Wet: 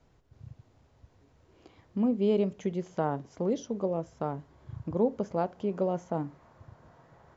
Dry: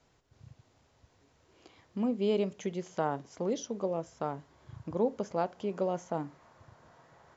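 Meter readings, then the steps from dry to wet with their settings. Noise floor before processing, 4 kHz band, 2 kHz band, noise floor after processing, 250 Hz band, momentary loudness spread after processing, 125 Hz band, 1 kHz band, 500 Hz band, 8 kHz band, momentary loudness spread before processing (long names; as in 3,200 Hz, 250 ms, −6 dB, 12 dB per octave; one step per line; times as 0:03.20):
−68 dBFS, −3.5 dB, −1.5 dB, −65 dBFS, +4.0 dB, 11 LU, +5.0 dB, +0.5 dB, +2.0 dB, can't be measured, 11 LU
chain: spectral tilt −2 dB per octave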